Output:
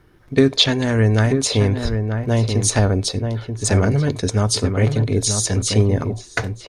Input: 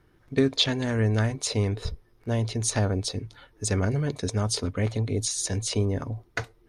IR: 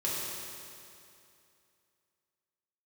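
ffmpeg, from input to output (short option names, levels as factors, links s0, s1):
-filter_complex "[0:a]asplit=2[s0][s1];[s1]adelay=932.9,volume=0.501,highshelf=f=4000:g=-21[s2];[s0][s2]amix=inputs=2:normalize=0,asplit=2[s3][s4];[1:a]atrim=start_sample=2205,afade=t=out:st=0.15:d=0.01,atrim=end_sample=7056[s5];[s4][s5]afir=irnorm=-1:irlink=0,volume=0.0562[s6];[s3][s6]amix=inputs=2:normalize=0,volume=2.37"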